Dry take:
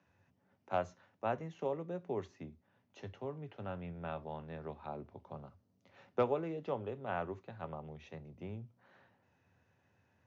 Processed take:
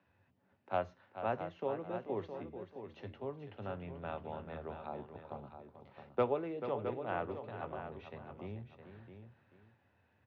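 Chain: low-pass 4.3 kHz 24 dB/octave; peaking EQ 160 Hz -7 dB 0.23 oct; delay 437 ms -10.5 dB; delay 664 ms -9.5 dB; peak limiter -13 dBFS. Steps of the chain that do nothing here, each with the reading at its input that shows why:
peak limiter -13 dBFS: peak at its input -18.0 dBFS

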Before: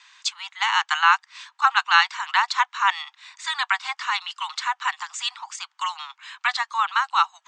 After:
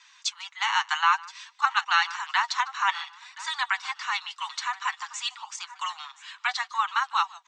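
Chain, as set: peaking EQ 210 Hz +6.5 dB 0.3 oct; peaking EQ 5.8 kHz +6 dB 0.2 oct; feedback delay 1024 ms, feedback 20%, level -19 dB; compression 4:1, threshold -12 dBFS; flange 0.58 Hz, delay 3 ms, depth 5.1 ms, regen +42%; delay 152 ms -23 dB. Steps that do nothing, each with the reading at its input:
peaking EQ 210 Hz: input has nothing below 680 Hz

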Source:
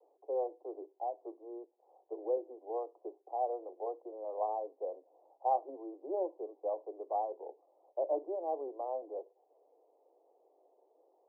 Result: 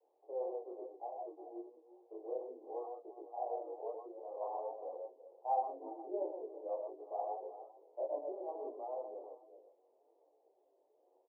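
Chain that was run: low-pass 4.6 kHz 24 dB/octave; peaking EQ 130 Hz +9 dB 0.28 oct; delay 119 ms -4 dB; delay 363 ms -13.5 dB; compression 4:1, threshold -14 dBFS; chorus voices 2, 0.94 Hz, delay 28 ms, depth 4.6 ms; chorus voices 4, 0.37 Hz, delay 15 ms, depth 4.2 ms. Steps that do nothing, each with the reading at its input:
low-pass 4.6 kHz: input has nothing above 1.1 kHz; peaking EQ 130 Hz: input has nothing below 250 Hz; compression, threshold -14 dBFS: peak at its input -20.0 dBFS

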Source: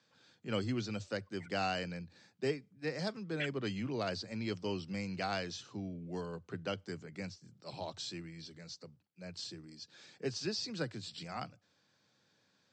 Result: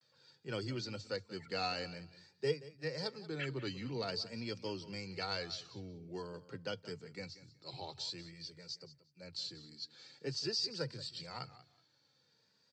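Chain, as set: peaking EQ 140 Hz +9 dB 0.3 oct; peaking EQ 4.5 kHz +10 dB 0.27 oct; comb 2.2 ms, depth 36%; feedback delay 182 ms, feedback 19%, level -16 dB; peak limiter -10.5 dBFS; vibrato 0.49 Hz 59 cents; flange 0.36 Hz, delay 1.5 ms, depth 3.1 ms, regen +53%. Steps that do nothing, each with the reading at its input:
peak limiter -10.5 dBFS: peak at its input -19.0 dBFS

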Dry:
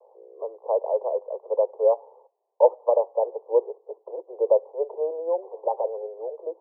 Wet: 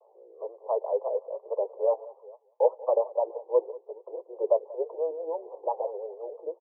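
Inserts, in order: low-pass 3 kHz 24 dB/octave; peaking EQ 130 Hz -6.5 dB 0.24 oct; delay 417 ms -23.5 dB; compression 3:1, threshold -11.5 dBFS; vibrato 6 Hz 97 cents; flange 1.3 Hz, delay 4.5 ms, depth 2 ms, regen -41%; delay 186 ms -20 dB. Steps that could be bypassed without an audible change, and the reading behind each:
low-pass 3 kHz: input has nothing above 1.1 kHz; peaking EQ 130 Hz: input has nothing below 320 Hz

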